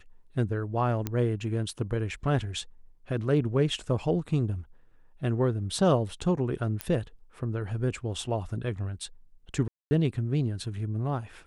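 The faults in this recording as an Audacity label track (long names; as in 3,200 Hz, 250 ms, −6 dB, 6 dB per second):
1.070000	1.070000	click −15 dBFS
6.810000	6.810000	click −14 dBFS
9.680000	9.910000	drop-out 230 ms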